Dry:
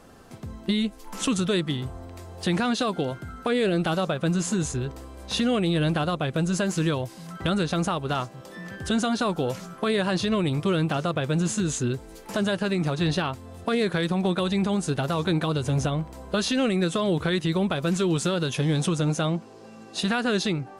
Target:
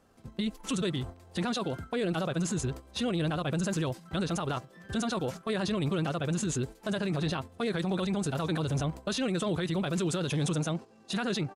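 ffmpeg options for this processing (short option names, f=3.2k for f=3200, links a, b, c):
-af "alimiter=limit=-21dB:level=0:latency=1:release=21,atempo=1.8,agate=range=-11dB:threshold=-36dB:ratio=16:detection=peak,volume=-2dB"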